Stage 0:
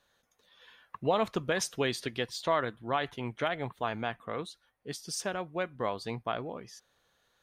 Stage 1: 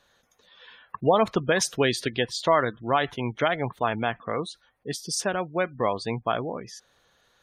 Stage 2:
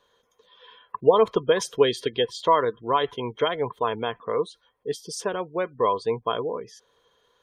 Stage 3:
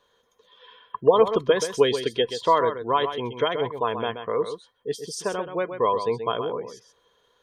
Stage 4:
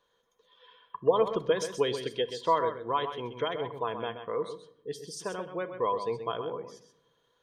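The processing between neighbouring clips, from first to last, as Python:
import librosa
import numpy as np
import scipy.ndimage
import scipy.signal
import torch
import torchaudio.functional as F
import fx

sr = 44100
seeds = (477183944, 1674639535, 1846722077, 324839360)

y1 = fx.spec_gate(x, sr, threshold_db=-25, keep='strong')
y1 = y1 * librosa.db_to_amplitude(7.5)
y2 = fx.small_body(y1, sr, hz=(450.0, 1000.0, 3200.0), ring_ms=35, db=15)
y2 = y2 * librosa.db_to_amplitude(-6.0)
y3 = y2 + 10.0 ** (-9.0 / 20.0) * np.pad(y2, (int(129 * sr / 1000.0), 0))[:len(y2)]
y4 = fx.room_shoebox(y3, sr, seeds[0], volume_m3=2500.0, walls='furnished', distance_m=0.69)
y4 = y4 * librosa.db_to_amplitude(-7.5)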